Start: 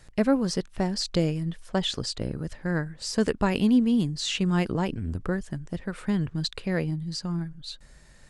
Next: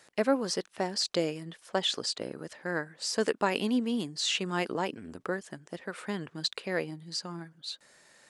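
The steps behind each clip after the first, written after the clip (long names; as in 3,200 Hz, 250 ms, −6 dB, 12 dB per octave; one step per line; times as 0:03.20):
high-pass filter 370 Hz 12 dB per octave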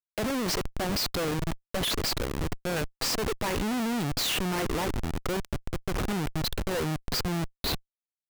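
comparator with hysteresis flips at −38.5 dBFS
level +5 dB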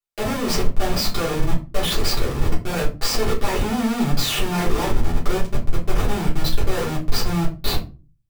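rectangular room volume 130 cubic metres, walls furnished, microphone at 3.4 metres
level −2.5 dB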